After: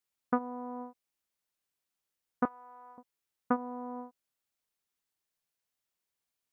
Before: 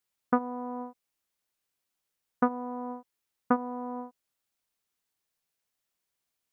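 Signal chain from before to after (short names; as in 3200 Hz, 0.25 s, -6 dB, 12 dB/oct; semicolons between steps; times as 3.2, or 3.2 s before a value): 2.45–2.98 HPF 1300 Hz 12 dB/oct; gain -4 dB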